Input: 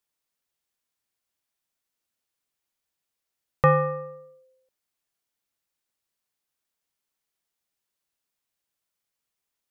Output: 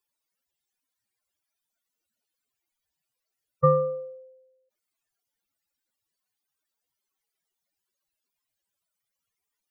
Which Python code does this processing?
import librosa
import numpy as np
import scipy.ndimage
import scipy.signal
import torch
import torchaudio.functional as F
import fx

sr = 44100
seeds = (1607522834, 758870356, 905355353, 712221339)

y = fx.spec_expand(x, sr, power=3.5)